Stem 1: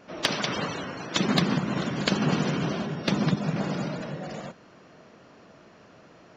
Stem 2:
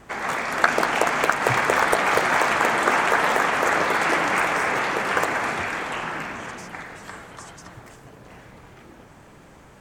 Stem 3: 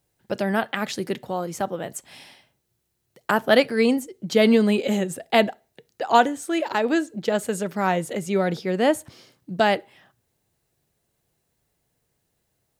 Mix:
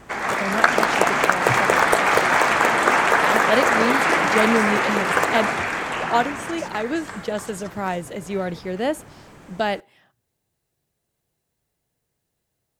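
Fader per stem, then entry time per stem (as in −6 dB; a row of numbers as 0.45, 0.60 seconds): muted, +2.5 dB, −3.5 dB; muted, 0.00 s, 0.00 s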